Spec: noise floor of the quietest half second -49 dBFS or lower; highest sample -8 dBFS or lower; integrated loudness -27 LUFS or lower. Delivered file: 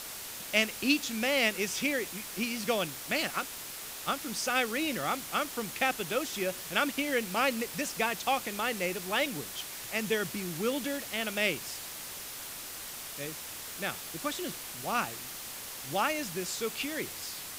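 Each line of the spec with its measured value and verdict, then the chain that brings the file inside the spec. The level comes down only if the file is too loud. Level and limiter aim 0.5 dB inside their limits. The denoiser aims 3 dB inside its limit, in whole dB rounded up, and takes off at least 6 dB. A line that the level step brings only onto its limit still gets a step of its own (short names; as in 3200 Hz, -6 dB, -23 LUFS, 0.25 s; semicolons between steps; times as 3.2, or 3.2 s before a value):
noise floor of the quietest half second -42 dBFS: fail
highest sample -10.0 dBFS: OK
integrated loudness -32.0 LUFS: OK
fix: denoiser 10 dB, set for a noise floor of -42 dBFS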